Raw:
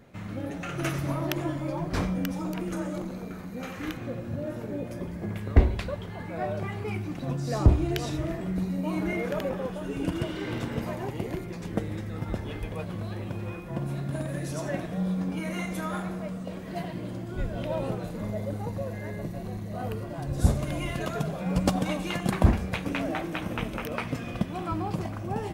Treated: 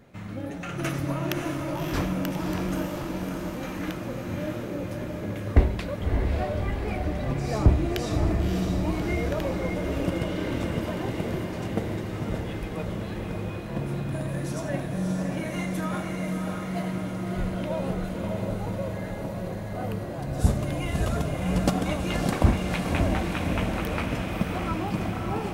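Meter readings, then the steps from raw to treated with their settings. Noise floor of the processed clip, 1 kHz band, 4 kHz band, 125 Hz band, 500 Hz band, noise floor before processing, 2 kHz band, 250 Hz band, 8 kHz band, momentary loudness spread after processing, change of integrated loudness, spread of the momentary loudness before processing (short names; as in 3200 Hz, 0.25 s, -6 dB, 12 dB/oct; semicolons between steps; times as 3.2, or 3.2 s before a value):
-34 dBFS, +2.5 dB, +2.5 dB, +2.0 dB, +2.5 dB, -38 dBFS, +2.5 dB, +2.0 dB, +2.5 dB, 8 LU, +2.0 dB, 9 LU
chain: diffused feedback echo 0.595 s, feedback 66%, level -3.5 dB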